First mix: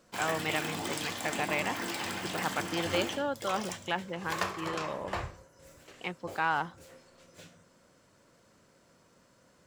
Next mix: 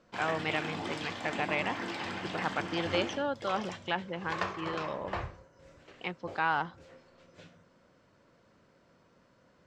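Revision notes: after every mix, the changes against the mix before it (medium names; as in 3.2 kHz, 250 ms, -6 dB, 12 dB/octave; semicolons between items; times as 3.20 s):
background: add distance through air 150 m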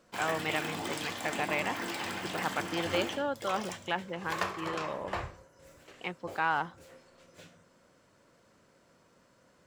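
background: remove distance through air 150 m; master: add tone controls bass -2 dB, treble -4 dB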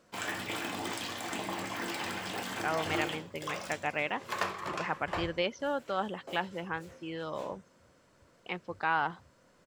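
speech: entry +2.45 s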